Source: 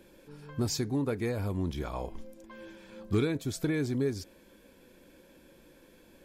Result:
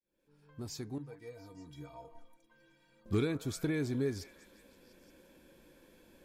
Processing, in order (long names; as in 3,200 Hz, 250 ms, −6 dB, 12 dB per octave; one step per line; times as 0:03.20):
fade in at the beginning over 1.84 s
0:00.98–0:03.06: stiff-string resonator 140 Hz, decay 0.28 s, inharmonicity 0.03
echo through a band-pass that steps 174 ms, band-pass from 920 Hz, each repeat 0.7 octaves, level −9.5 dB
level −3.5 dB